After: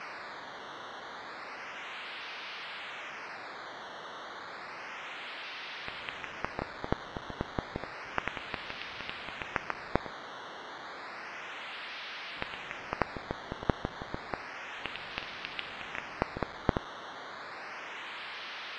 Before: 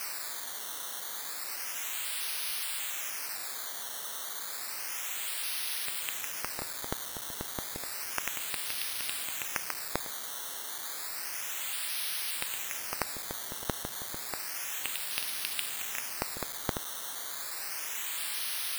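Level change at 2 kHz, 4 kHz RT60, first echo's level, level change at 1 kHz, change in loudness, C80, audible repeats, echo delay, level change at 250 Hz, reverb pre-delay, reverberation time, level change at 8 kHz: +1.0 dB, no reverb audible, no echo audible, +4.0 dB, −6.0 dB, no reverb audible, no echo audible, no echo audible, +6.5 dB, no reverb audible, no reverb audible, −25.5 dB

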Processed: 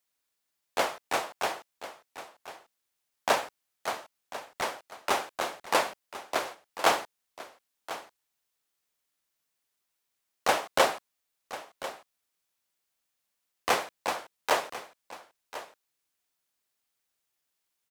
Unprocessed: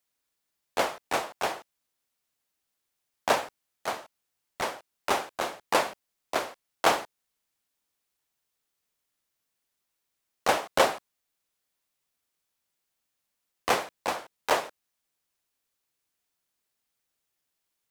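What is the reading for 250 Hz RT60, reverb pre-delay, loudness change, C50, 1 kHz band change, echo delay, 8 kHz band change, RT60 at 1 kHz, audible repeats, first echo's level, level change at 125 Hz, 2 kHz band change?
no reverb audible, no reverb audible, −1.5 dB, no reverb audible, −0.5 dB, 1,044 ms, 0.0 dB, no reverb audible, 1, −14.5 dB, −4.0 dB, 0.0 dB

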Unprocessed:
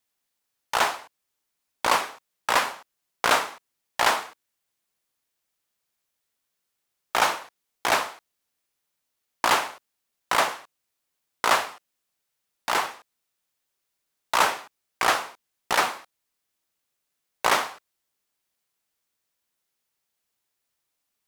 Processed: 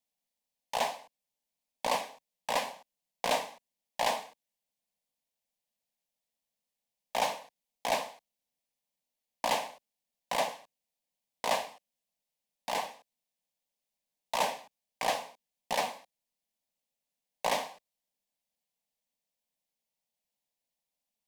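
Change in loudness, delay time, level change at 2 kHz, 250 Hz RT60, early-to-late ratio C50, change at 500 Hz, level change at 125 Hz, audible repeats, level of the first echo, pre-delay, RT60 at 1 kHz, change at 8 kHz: −9.0 dB, no echo audible, −13.0 dB, no reverb audible, no reverb audible, −4.0 dB, −6.5 dB, no echo audible, no echo audible, no reverb audible, no reverb audible, −9.0 dB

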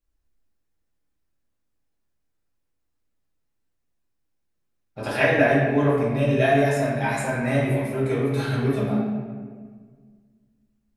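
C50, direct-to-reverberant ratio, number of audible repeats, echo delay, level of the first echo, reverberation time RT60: 0.0 dB, −7.0 dB, no echo audible, no echo audible, no echo audible, 1.7 s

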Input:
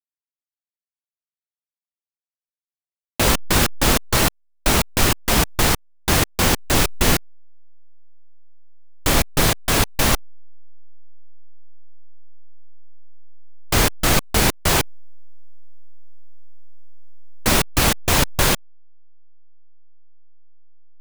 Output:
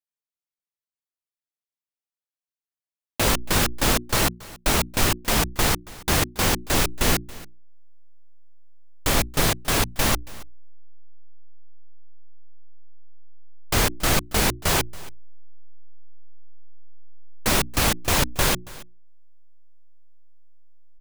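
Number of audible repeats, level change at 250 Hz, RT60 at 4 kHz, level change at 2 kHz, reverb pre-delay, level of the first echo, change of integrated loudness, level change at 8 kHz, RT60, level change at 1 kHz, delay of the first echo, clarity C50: 1, −4.0 dB, no reverb audible, −3.5 dB, no reverb audible, −20.5 dB, −3.5 dB, −3.5 dB, no reverb audible, −3.5 dB, 278 ms, no reverb audible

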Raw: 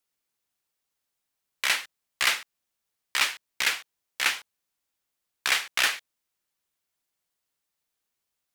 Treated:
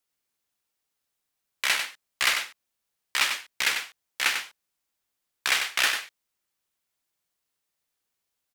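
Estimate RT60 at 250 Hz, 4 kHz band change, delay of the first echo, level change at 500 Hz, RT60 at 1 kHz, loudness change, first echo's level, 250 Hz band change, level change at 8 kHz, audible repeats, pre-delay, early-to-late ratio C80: no reverb audible, +1.0 dB, 96 ms, +1.0 dB, no reverb audible, +0.5 dB, −7.0 dB, +0.5 dB, +1.0 dB, 1, no reverb audible, no reverb audible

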